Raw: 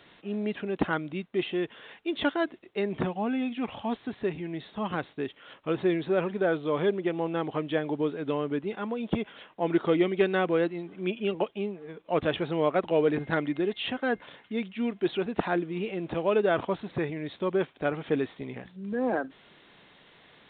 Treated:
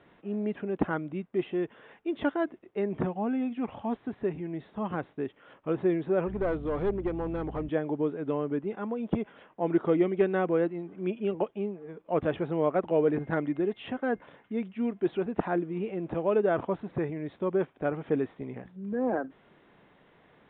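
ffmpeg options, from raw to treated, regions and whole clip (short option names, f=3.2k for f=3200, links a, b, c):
-filter_complex "[0:a]asettb=1/sr,asplit=3[a][b][c];[a]atrim=end=6.274[d];[b]atrim=start=6.27:end=7.69,asetpts=PTS-STARTPTS,afade=t=in:d=0.004:c=qsin,afade=t=out:st=1.416:d=0.004:c=qsin,aeval=exprs='clip(val(0),-1,0.0447)':c=same,aeval=exprs='val(0)+0.01*(sin(2*PI*60*n/s)+sin(2*PI*2*60*n/s)/2+sin(2*PI*3*60*n/s)/3+sin(2*PI*4*60*n/s)/4+sin(2*PI*5*60*n/s)/5)':c=same[e];[c]atrim=start=7.686[f];[d][e]acrossfade=d=0.004:c1=hsin:c2=qsin[g];[g][f]acrossfade=d=0.004:c1=qsin:c2=hsin,lowpass=2.7k,highshelf=f=2k:g=-11.5"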